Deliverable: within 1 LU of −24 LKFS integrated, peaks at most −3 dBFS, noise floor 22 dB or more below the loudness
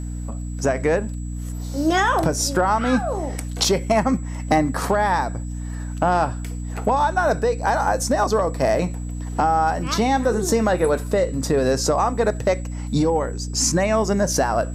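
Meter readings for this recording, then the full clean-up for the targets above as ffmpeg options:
mains hum 60 Hz; hum harmonics up to 300 Hz; level of the hum −26 dBFS; interfering tone 7,800 Hz; level of the tone −45 dBFS; integrated loudness −21.5 LKFS; sample peak −5.0 dBFS; target loudness −24.0 LKFS
→ -af "bandreject=frequency=60:width_type=h:width=4,bandreject=frequency=120:width_type=h:width=4,bandreject=frequency=180:width_type=h:width=4,bandreject=frequency=240:width_type=h:width=4,bandreject=frequency=300:width_type=h:width=4"
-af "bandreject=frequency=7800:width=30"
-af "volume=-2.5dB"

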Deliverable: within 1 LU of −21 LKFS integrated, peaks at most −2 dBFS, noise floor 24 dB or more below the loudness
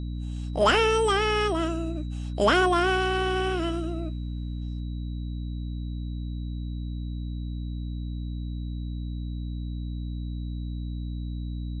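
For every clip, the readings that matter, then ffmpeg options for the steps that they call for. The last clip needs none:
mains hum 60 Hz; hum harmonics up to 300 Hz; level of the hum −30 dBFS; interfering tone 3,900 Hz; level of the tone −55 dBFS; integrated loudness −28.5 LKFS; sample peak −11.0 dBFS; target loudness −21.0 LKFS
→ -af "bandreject=frequency=60:width_type=h:width=4,bandreject=frequency=120:width_type=h:width=4,bandreject=frequency=180:width_type=h:width=4,bandreject=frequency=240:width_type=h:width=4,bandreject=frequency=300:width_type=h:width=4"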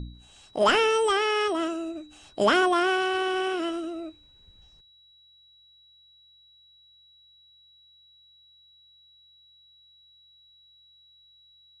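mains hum none found; interfering tone 3,900 Hz; level of the tone −55 dBFS
→ -af "bandreject=frequency=3900:width=30"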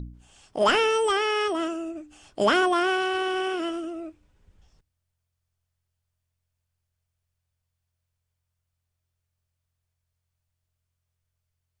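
interfering tone none found; integrated loudness −24.0 LKFS; sample peak −11.5 dBFS; target loudness −21.0 LKFS
→ -af "volume=3dB"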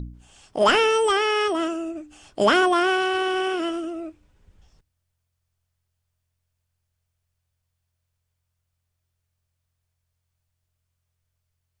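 integrated loudness −21.0 LKFS; sample peak −8.5 dBFS; background noise floor −78 dBFS

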